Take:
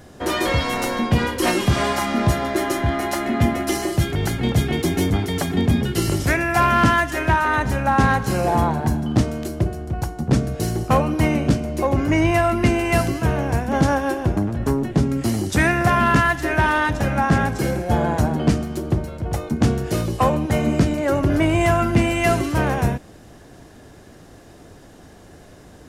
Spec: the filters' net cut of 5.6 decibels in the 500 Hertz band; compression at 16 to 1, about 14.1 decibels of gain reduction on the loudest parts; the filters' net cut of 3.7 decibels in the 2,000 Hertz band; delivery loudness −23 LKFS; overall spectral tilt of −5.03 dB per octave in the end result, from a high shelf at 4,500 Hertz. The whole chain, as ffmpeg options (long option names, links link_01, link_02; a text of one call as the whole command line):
ffmpeg -i in.wav -af "equalizer=frequency=500:width_type=o:gain=-8,equalizer=frequency=2000:width_type=o:gain=-5,highshelf=frequency=4500:gain=4.5,acompressor=threshold=-27dB:ratio=16,volume=9dB" out.wav